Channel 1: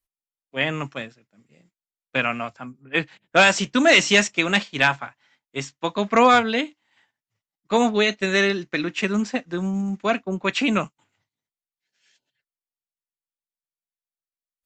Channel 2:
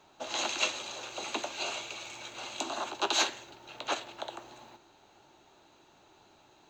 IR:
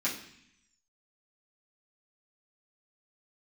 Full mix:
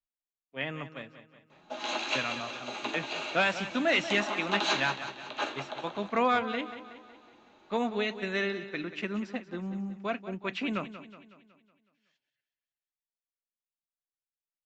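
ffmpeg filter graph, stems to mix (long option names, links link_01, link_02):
-filter_complex "[0:a]volume=-11dB,asplit=2[link_01][link_02];[link_02]volume=-13dB[link_03];[1:a]adelay=1500,volume=-4dB,asplit=3[link_04][link_05][link_06];[link_05]volume=-5dB[link_07];[link_06]volume=-5.5dB[link_08];[2:a]atrim=start_sample=2205[link_09];[link_07][link_09]afir=irnorm=-1:irlink=0[link_10];[link_03][link_08]amix=inputs=2:normalize=0,aecho=0:1:185|370|555|740|925|1110|1295:1|0.51|0.26|0.133|0.0677|0.0345|0.0176[link_11];[link_01][link_04][link_10][link_11]amix=inputs=4:normalize=0,lowpass=3900"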